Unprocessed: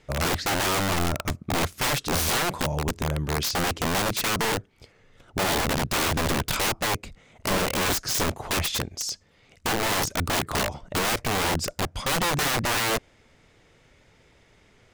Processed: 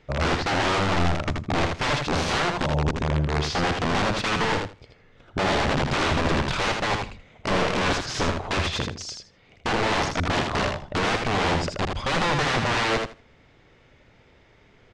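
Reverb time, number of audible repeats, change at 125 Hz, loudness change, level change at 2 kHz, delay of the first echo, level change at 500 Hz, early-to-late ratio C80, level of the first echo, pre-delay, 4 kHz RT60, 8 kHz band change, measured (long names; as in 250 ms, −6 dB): no reverb audible, 2, +3.0 dB, +1.0 dB, +2.0 dB, 80 ms, +3.0 dB, no reverb audible, −4.5 dB, no reverb audible, no reverb audible, −8.0 dB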